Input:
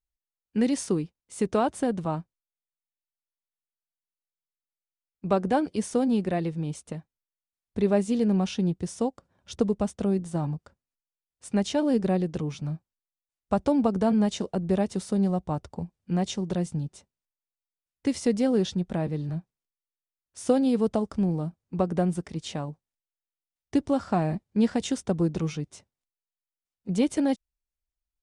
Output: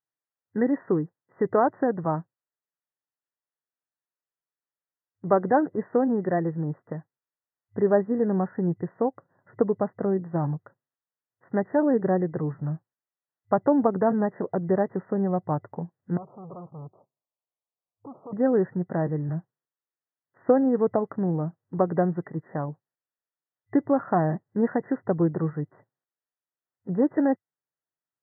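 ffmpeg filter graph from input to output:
-filter_complex "[0:a]asettb=1/sr,asplit=3[a][b][c];[a]atrim=end=16.174[d];[b]atrim=start=16.17:end=18.33,asetpts=PTS-STARTPTS,afade=t=in:d=0.004:c=qsin,afade=t=out:st=2.156:d=0.004:c=qsin,equalizer=f=660:t=o:w=0.8:g=7,aeval=exprs='(tanh(100*val(0)+0.55)-tanh(0.55))/100':c=same,asuperstop=centerf=1800:order=12:qfactor=1.4[e];[c]atrim=start=18.326[f];[d][e]acrossfade=d=0.004:c1=hsin:c2=qsin[g];[g][f]acrossfade=d=0.004:c1=qsin:c2=hsin,afftfilt=real='re*between(b*sr/4096,100,2000)':imag='im*between(b*sr/4096,100,2000)':win_size=4096:overlap=0.75,equalizer=f=210:w=2.6:g=-7.5,volume=4dB"

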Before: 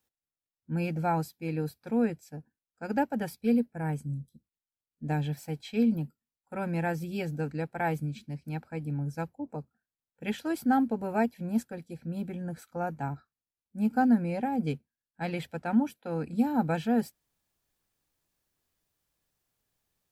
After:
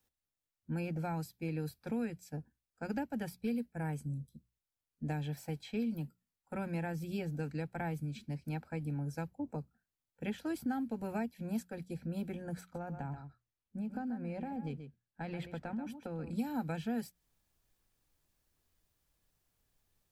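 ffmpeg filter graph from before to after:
-filter_complex "[0:a]asettb=1/sr,asplit=3[a][b][c];[a]atrim=end=12.614[d];[b]atrim=start=12.61:end=16.3,asetpts=PTS-STARTPTS,afade=t=in:d=0.004:c=qsin,afade=t=out:st=3.686:d=0.004:c=qsin,aemphasis=mode=reproduction:type=cd,acompressor=threshold=-37dB:ratio=4:attack=3.2:release=140:knee=1:detection=peak,aecho=1:1:132:0.299,atrim=end_sample=162729[e];[c]atrim=start=16.296[f];[d][e]acrossfade=d=0.004:c1=hsin:c2=qsin[g];[g][f]acrossfade=d=0.004:c1=qsin:c2=hsin,lowshelf=f=97:g=11,acrossover=split=290|1800[h][i][j];[h]acompressor=threshold=-39dB:ratio=4[k];[i]acompressor=threshold=-42dB:ratio=4[l];[j]acompressor=threshold=-51dB:ratio=4[m];[k][l][m]amix=inputs=3:normalize=0,bandreject=f=60:t=h:w=6,bandreject=f=120:t=h:w=6,bandreject=f=180:t=h:w=6"

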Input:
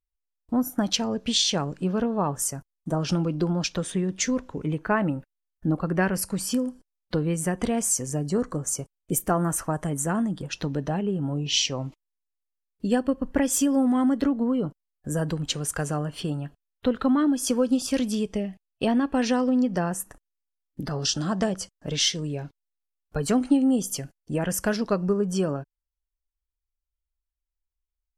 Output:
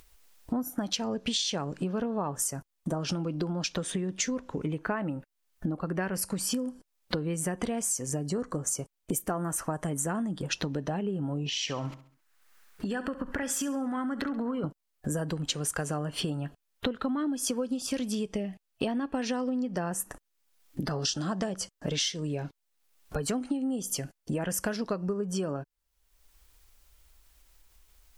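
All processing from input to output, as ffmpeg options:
-filter_complex "[0:a]asettb=1/sr,asplit=3[a][b][c];[a]atrim=end=11.494[d];[b]atrim=start=11.49:end=14.64,asetpts=PTS-STARTPTS,afade=t=in:d=0.004:c=qsin,afade=t=out:st=3.146:d=0.004:c=qsin,equalizer=f=1.5k:w=1.2:g=11.5,acompressor=threshold=-33dB:ratio=6:attack=3.2:release=140:knee=1:detection=peak,aecho=1:1:67|134|201|268:0.178|0.0694|0.027|0.0105,atrim=end_sample=138915[e];[c]atrim=start=14.636[f];[d][e]acrossfade=d=0.004:c1=hsin:c2=qsin[g];[g][f]acrossfade=d=0.004:c1=qsin:c2=hsin,acompressor=threshold=-36dB:ratio=8,lowshelf=f=120:g=-6,acompressor=mode=upward:threshold=-49dB:ratio=2.5,volume=8.5dB"

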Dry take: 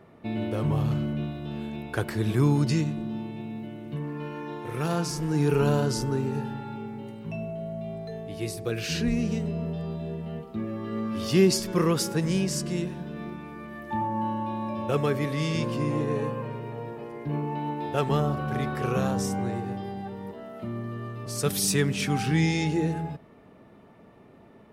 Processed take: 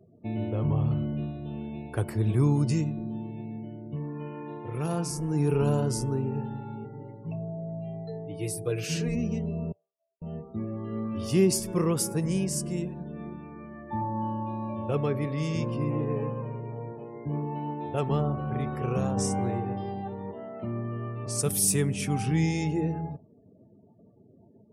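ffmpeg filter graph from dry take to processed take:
-filter_complex "[0:a]asettb=1/sr,asplit=3[a][b][c];[a]atrim=end=6.844[d];[b]atrim=start=6.84:end=9.15,asetpts=PTS-STARTPTS,afade=t=in:d=0.004:c=qsin,afade=t=out:st=2.306:d=0.004:c=qsin,lowshelf=f=72:g=-11.5,aecho=1:1:6.6:0.87,atrim=end_sample=101871[e];[c]atrim=start=9.146[f];[d][e]acrossfade=d=0.004:c1=hsin:c2=qsin[g];[g][f]acrossfade=d=0.004:c1=qsin:c2=hsin,asettb=1/sr,asplit=3[h][i][j];[h]atrim=end=9.724[k];[i]atrim=start=9.72:end=10.22,asetpts=PTS-STARTPTS,afade=t=in:d=0.004:c=qsin,afade=t=out:st=0.496:d=0.004:c=qsin,highpass=510,lowpass=2.4k,aderivative[l];[j]atrim=start=10.216[m];[k][l]acrossfade=d=0.004:c1=hsin:c2=qsin[n];[n][m]acrossfade=d=0.004:c1=qsin:c2=hsin,asettb=1/sr,asplit=3[o][p][q];[o]atrim=end=19.174[r];[p]atrim=start=19.17:end=21.42,asetpts=PTS-STARTPTS,afade=t=in:d=0.004:c=qsin,afade=t=out:st=2.246:d=0.004:c=qsin,lowpass=7.9k,acontrast=40,lowshelf=f=250:g=-6.5[s];[q]atrim=start=21.416[t];[r][s]acrossfade=d=0.004:c1=hsin:c2=qsin[u];[u][t]acrossfade=d=0.004:c1=qsin:c2=hsin,afftdn=nr=36:nf=-47,equalizer=f=100:t=o:w=0.67:g=6,equalizer=f=1.6k:t=o:w=0.67:g=-7,equalizer=f=4k:t=o:w=0.67:g=-8,equalizer=f=10k:t=o:w=0.67:g=9,volume=-2.5dB"

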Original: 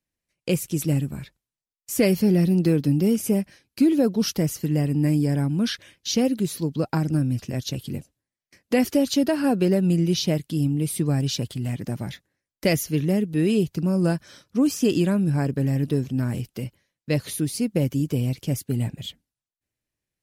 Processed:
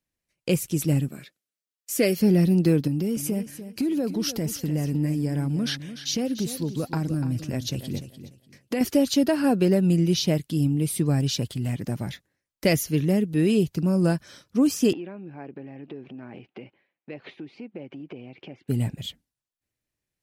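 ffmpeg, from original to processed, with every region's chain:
-filter_complex "[0:a]asettb=1/sr,asplit=3[a][b][c];[a]atrim=end=1.084[d];[b]atrim=start=1.08:end=2.21,asetpts=PTS-STARTPTS,afade=t=in:d=0.004:c=qsin,afade=t=out:st=1.126:d=0.004:c=qsin,highpass=260,equalizer=f=920:t=o:w=0.37:g=-12.5[e];[c]atrim=start=2.206[f];[d][e]acrossfade=d=0.004:c1=hsin:c2=qsin[g];[g][f]acrossfade=d=0.004:c1=qsin:c2=hsin,asettb=1/sr,asplit=3[h][i][j];[h]atrim=end=2.874[k];[i]atrim=start=2.87:end=8.81,asetpts=PTS-STARTPTS,afade=t=in:d=0.004:c=qsin,afade=t=out:st=5.936:d=0.004:c=qsin,acompressor=threshold=-22dB:ratio=5:attack=3.2:release=140:knee=1:detection=peak,aecho=1:1:295|590|885:0.251|0.0578|0.0133,atrim=end_sample=261954[l];[j]atrim=start=8.806[m];[k][l]acrossfade=d=0.004:c1=hsin:c2=qsin[n];[n][m]acrossfade=d=0.004:c1=qsin:c2=hsin,asettb=1/sr,asplit=3[o][p][q];[o]atrim=end=14.934[r];[p]atrim=start=14.93:end=18.68,asetpts=PTS-STARTPTS,afade=t=in:d=0.004:c=qsin,afade=t=out:st=3.746:d=0.004:c=qsin,acompressor=threshold=-33dB:ratio=6:attack=3.2:release=140:knee=1:detection=peak,highpass=260,equalizer=f=360:t=q:w=4:g=5,equalizer=f=780:t=q:w=4:g=7,equalizer=f=2.4k:t=q:w=4:g=5,lowpass=f=2.9k:w=0.5412,lowpass=f=2.9k:w=1.3066[s];[q]atrim=start=18.676[t];[r][s]acrossfade=d=0.004:c1=hsin:c2=qsin[u];[u][t]acrossfade=d=0.004:c1=qsin:c2=hsin"

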